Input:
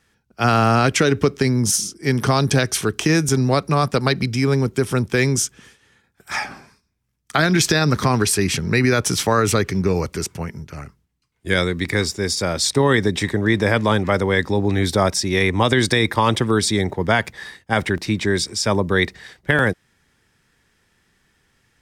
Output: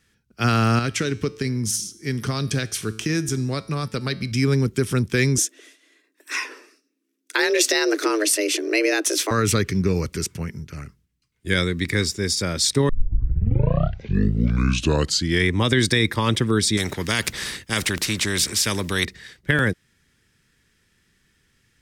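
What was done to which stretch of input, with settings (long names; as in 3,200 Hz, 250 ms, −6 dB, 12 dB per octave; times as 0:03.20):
0:00.79–0:04.32: tuned comb filter 110 Hz, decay 0.73 s, mix 50%
0:05.38–0:09.31: frequency shifter +210 Hz
0:12.89: tape start 2.67 s
0:16.77–0:19.05: every bin compressed towards the loudest bin 2 to 1
whole clip: parametric band 780 Hz −11 dB 1.2 octaves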